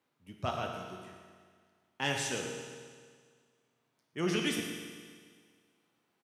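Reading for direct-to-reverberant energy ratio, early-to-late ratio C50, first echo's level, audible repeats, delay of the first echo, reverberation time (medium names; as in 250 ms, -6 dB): 0.5 dB, 3.0 dB, -11.0 dB, 1, 116 ms, 1.8 s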